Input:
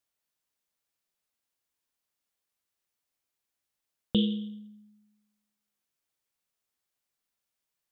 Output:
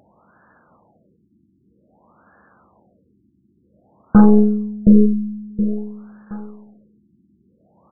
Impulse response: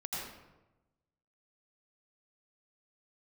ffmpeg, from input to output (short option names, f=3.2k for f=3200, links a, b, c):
-af "highpass=f=61:w=0.5412,highpass=f=61:w=1.3066,equalizer=f=200:w=4.1:g=9.5,bandreject=f=420:w=12,aeval=exprs='0.376*(cos(1*acos(clip(val(0)/0.376,-1,1)))-cos(1*PI/2))+0.0119*(cos(7*acos(clip(val(0)/0.376,-1,1)))-cos(7*PI/2))+0.0531*(cos(8*acos(clip(val(0)/0.376,-1,1)))-cos(8*PI/2))':c=same,acompressor=mode=upward:threshold=-40dB:ratio=2.5,highshelf=f=2.4k:t=q:w=3:g=-6.5,aecho=1:1:720|1440|2160:0.473|0.123|0.032,alimiter=level_in=17.5dB:limit=-1dB:release=50:level=0:latency=1,afftfilt=real='re*lt(b*sr/1024,350*pow(1800/350,0.5+0.5*sin(2*PI*0.52*pts/sr)))':imag='im*lt(b*sr/1024,350*pow(1800/350,0.5+0.5*sin(2*PI*0.52*pts/sr)))':win_size=1024:overlap=0.75,volume=-1dB"